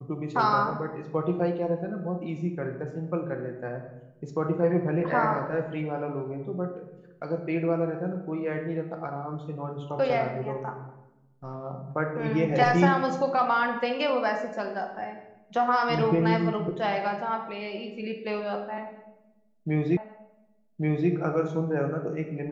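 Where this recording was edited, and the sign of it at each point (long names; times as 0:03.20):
0:19.97: the same again, the last 1.13 s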